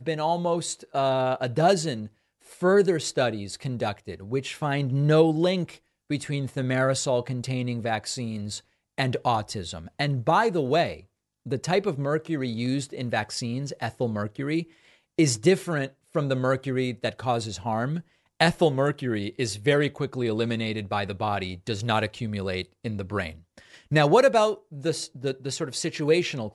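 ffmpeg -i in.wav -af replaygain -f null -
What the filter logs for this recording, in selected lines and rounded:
track_gain = +4.7 dB
track_peak = 0.431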